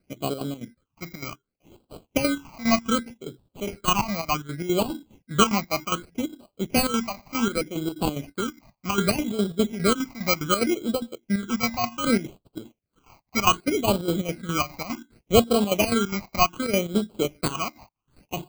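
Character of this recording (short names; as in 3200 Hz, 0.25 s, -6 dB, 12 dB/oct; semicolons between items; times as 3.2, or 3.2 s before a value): aliases and images of a low sample rate 1800 Hz, jitter 0%; chopped level 4.9 Hz, depth 65%, duty 65%; phasing stages 8, 0.66 Hz, lowest notch 420–2000 Hz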